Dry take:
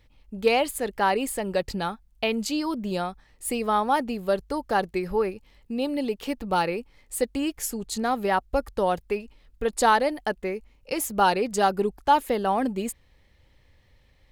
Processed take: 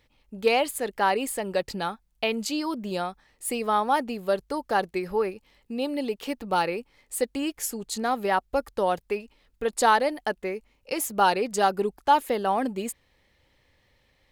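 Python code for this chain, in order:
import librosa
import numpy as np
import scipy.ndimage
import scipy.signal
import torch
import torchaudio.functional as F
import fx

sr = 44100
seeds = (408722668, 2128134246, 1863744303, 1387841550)

y = fx.low_shelf(x, sr, hz=130.0, db=-11.5)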